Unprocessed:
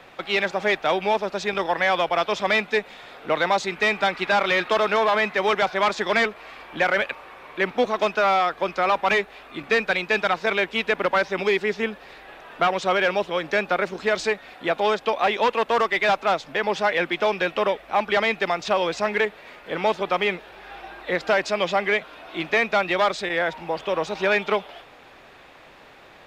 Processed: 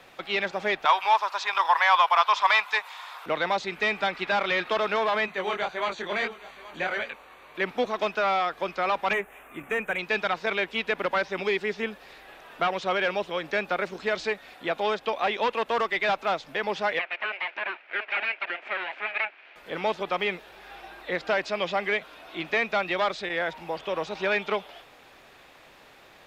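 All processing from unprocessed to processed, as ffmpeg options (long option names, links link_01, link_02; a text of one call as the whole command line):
ffmpeg -i in.wav -filter_complex "[0:a]asettb=1/sr,asplit=3[link_01][link_02][link_03];[link_01]atrim=end=0.854[link_04];[link_02]atrim=start=0.85:end=3.26,asetpts=PTS-STARTPTS,afade=type=in:duration=0.004:curve=qsin,afade=type=out:start_time=2.406:duration=0.004:curve=qsin,highpass=frequency=1000:width_type=q:width=5.5,highshelf=frequency=4300:gain=10.5[link_05];[link_03]atrim=start=3.256[link_06];[link_04][link_05]acrossfade=duration=0.004:curve1=hsin:curve2=qsin[link_07];[link_07][link_06]acrossfade=duration=0.004:curve1=qsin:curve2=hsin,asettb=1/sr,asplit=3[link_08][link_09][link_10];[link_08]atrim=end=5.264[link_11];[link_09]atrim=start=5.26:end=7.55,asetpts=PTS-STARTPTS,afade=type=in:duration=0.004:curve=qsin,afade=type=out:start_time=2.286:duration=0.004:curve=qsin,asuperstop=centerf=5200:order=20:qfactor=5.9,flanger=delay=17.5:depth=7.5:speed=1.7,aecho=1:1:823:0.126,atrim=end_sample=100989[link_12];[link_10]atrim=start=7.546[link_13];[link_11][link_12]acrossfade=duration=0.004:curve1=hsin:curve2=qsin[link_14];[link_14][link_13]acrossfade=duration=0.004:curve1=qsin:curve2=hsin,asettb=1/sr,asplit=3[link_15][link_16][link_17];[link_15]atrim=end=9.134[link_18];[link_16]atrim=start=9.13:end=9.99,asetpts=PTS-STARTPTS,afade=type=in:duration=0.004:curve=qsin,afade=type=out:start_time=0.856:duration=0.004:curve=qsin,highshelf=frequency=4400:gain=6.5,volume=17dB,asoftclip=hard,volume=-17dB,asuperstop=centerf=4600:order=4:qfactor=0.84[link_19];[link_17]atrim=start=9.986[link_20];[link_18][link_19]acrossfade=duration=0.004:curve1=hsin:curve2=qsin[link_21];[link_21][link_20]acrossfade=duration=0.004:curve1=qsin:curve2=hsin,asettb=1/sr,asplit=3[link_22][link_23][link_24];[link_22]atrim=end=16.994[link_25];[link_23]atrim=start=16.99:end=19.56,asetpts=PTS-STARTPTS,afade=type=in:duration=0.004:curve=qsin,afade=type=out:start_time=2.566:duration=0.004:curve=qsin,aeval=exprs='abs(val(0))':channel_layout=same,highpass=frequency=390:width=0.5412,highpass=frequency=390:width=1.3066,equalizer=frequency=460:width_type=q:width=4:gain=-6,equalizer=frequency=660:width_type=q:width=4:gain=4,equalizer=frequency=1100:width_type=q:width=4:gain=-5,equalizer=frequency=1600:width_type=q:width=4:gain=4,equalizer=frequency=2400:width_type=q:width=4:gain=10,lowpass=frequency=2700:width=0.5412,lowpass=frequency=2700:width=1.3066[link_26];[link_24]atrim=start=19.556[link_27];[link_25][link_26]acrossfade=duration=0.004:curve1=hsin:curve2=qsin[link_28];[link_28][link_27]acrossfade=duration=0.004:curve1=qsin:curve2=hsin,acrossover=split=4700[link_29][link_30];[link_30]acompressor=threshold=-57dB:ratio=4:attack=1:release=60[link_31];[link_29][link_31]amix=inputs=2:normalize=0,aemphasis=mode=production:type=cd,volume=-5dB" out.wav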